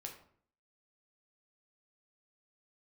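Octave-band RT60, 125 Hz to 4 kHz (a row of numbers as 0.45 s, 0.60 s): 0.70 s, 0.65 s, 0.60 s, 0.55 s, 0.45 s, 0.35 s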